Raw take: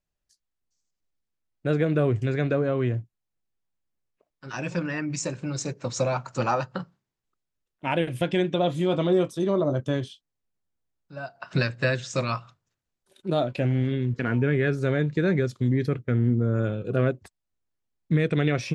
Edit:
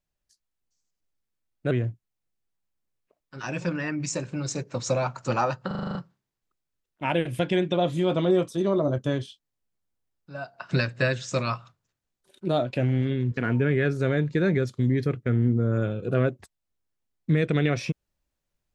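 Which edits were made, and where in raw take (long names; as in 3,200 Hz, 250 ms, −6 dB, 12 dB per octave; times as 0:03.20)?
0:01.71–0:02.81: remove
0:06.77: stutter 0.04 s, 8 plays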